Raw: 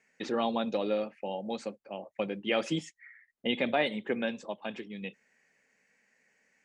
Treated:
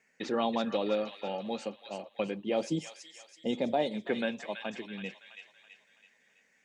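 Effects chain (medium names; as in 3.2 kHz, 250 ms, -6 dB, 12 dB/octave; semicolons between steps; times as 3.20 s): 2.44–4.07 s: high-order bell 1.9 kHz -12.5 dB; on a send: feedback echo behind a high-pass 329 ms, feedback 46%, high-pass 1.6 kHz, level -4.5 dB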